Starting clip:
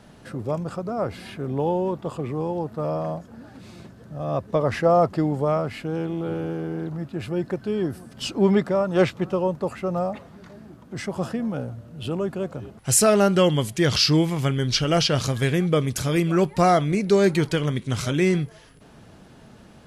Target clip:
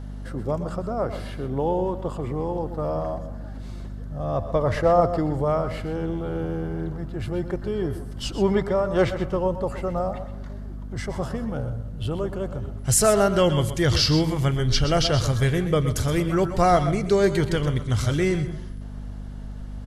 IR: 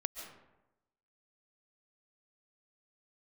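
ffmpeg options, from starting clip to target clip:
-filter_complex "[0:a]bandreject=f=2500:w=9.5,asplit=2[s0][s1];[1:a]atrim=start_sample=2205,lowpass=2200[s2];[s1][s2]afir=irnorm=-1:irlink=0,volume=0.266[s3];[s0][s3]amix=inputs=2:normalize=0,asubboost=boost=10:cutoff=62,asplit=2[s4][s5];[s5]aecho=0:1:128:0.237[s6];[s4][s6]amix=inputs=2:normalize=0,aeval=exprs='val(0)+0.0251*(sin(2*PI*50*n/s)+sin(2*PI*2*50*n/s)/2+sin(2*PI*3*50*n/s)/3+sin(2*PI*4*50*n/s)/4+sin(2*PI*5*50*n/s)/5)':c=same,aecho=1:1:116:0.158,volume=0.841"

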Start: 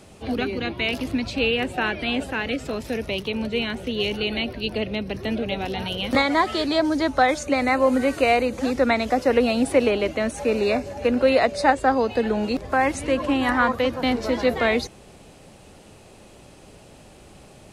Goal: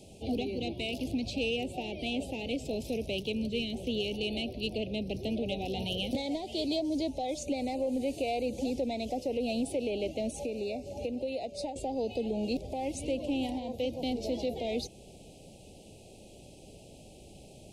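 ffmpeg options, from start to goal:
-filter_complex "[0:a]asettb=1/sr,asplit=3[s0][s1][s2];[s0]atrim=end=3.324[s3];[s1]atrim=start=3.32:end=3.73,asetpts=PTS-STARTPTS,afade=t=in:d=0.004:c=qsin,afade=t=out:st=0.406:d=0.004:c=qsin,equalizer=f=880:w=1.4:g=-14[s4];[s2]atrim=start=3.726[s5];[s3][s4]acrossfade=d=0.004:c1=hsin:c2=qsin[s6];[s6][s5]acrossfade=d=0.004:c1=qsin:c2=hsin,asettb=1/sr,asplit=3[s7][s8][s9];[s7]atrim=end=10.444[s10];[s8]atrim=start=10.44:end=11.76,asetpts=PTS-STARTPTS,afade=t=in:d=0.004:c=qsin,afade=t=out:st=1.316:d=0.004:c=qsin,acompressor=threshold=0.0398:ratio=6[s11];[s9]atrim=start=11.756[s12];[s10][s11]acrossfade=d=0.004:c1=hsin:c2=qsin[s13];[s13][s12]acrossfade=d=0.004:c1=qsin:c2=hsin,alimiter=limit=0.141:level=0:latency=1:release=320,asoftclip=type=tanh:threshold=0.119,asuperstop=centerf=1400:order=8:qfactor=0.79,volume=0.631"

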